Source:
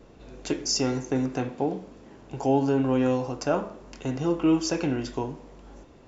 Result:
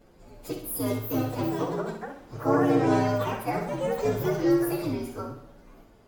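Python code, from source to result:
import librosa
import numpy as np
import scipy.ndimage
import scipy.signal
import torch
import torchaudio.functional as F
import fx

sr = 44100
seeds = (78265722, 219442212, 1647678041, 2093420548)

y = fx.partial_stretch(x, sr, pct=125)
y = fx.echo_pitch(y, sr, ms=507, semitones=4, count=2, db_per_echo=-3.0)
y = fx.echo_feedback(y, sr, ms=64, feedback_pct=45, wet_db=-7.5)
y = y * 10.0 ** (-1.5 / 20.0)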